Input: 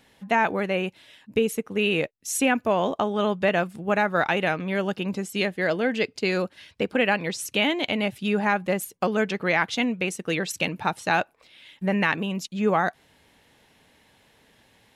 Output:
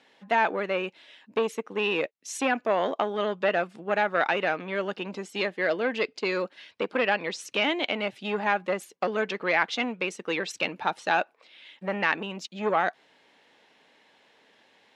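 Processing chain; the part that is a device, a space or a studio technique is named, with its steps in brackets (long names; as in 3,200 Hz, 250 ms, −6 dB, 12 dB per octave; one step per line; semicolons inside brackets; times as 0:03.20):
public-address speaker with an overloaded transformer (saturating transformer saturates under 790 Hz; band-pass filter 320–5,100 Hz)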